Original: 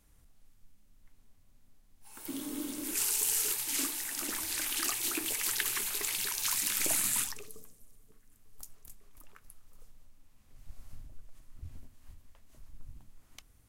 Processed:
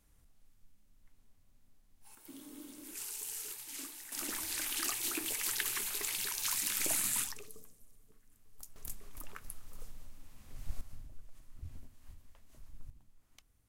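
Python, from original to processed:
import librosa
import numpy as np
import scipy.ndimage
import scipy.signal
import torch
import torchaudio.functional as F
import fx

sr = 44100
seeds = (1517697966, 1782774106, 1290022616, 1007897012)

y = fx.gain(x, sr, db=fx.steps((0.0, -3.5), (2.15, -12.0), (4.12, -3.0), (8.76, 8.5), (10.81, -1.0), (12.9, -9.0)))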